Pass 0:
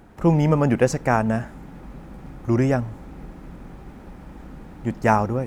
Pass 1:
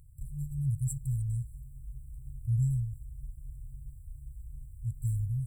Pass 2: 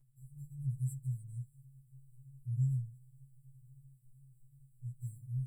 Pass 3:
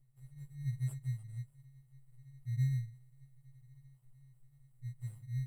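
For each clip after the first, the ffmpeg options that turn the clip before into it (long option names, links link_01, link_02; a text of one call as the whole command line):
ffmpeg -i in.wav -af "afftfilt=real='re*(1-between(b*sr/4096,150,7400))':imag='im*(1-between(b*sr/4096,150,7400))':win_size=4096:overlap=0.75,equalizer=frequency=500:width=0.49:gain=-13" out.wav
ffmpeg -i in.wav -af "afftfilt=real='re*2.45*eq(mod(b,6),0)':imag='im*2.45*eq(mod(b,6),0)':win_size=2048:overlap=0.75,volume=-8.5dB" out.wav
ffmpeg -i in.wav -filter_complex "[0:a]flanger=delay=0.4:depth=7.9:regen=-81:speed=0.39:shape=triangular,asplit=2[link_01][link_02];[link_02]acrusher=samples=22:mix=1:aa=0.000001,volume=-5dB[link_03];[link_01][link_03]amix=inputs=2:normalize=0" out.wav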